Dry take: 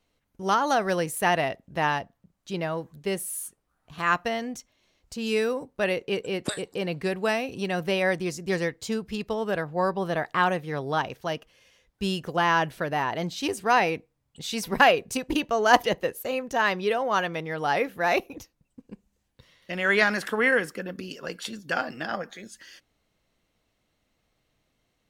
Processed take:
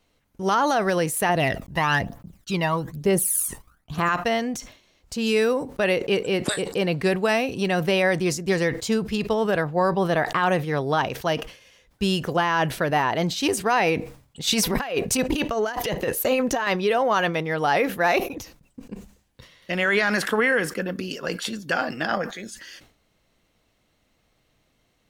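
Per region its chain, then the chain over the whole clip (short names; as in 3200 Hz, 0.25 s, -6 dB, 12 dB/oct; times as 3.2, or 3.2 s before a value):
1.29–4.09 phaser 1.1 Hz, delay 1.1 ms, feedback 63% + expander -54 dBFS + high shelf 11000 Hz +5 dB
14.47–16.67 negative-ratio compressor -30 dBFS + phaser 1.3 Hz, delay 4.8 ms, feedback 23%
whole clip: limiter -17.5 dBFS; sustainer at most 120 dB/s; gain +6 dB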